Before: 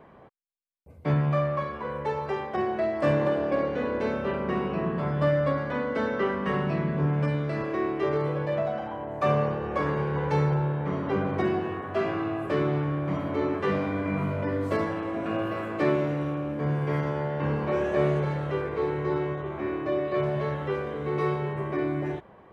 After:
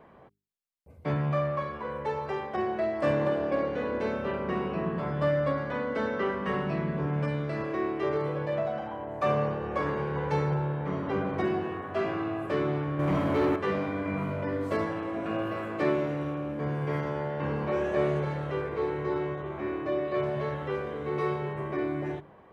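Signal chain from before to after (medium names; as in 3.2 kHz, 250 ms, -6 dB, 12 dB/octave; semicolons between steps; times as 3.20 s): hum notches 50/100/150/200/250/300/350/400 Hz; 12.99–13.56 s: waveshaping leveller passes 2; trim -2 dB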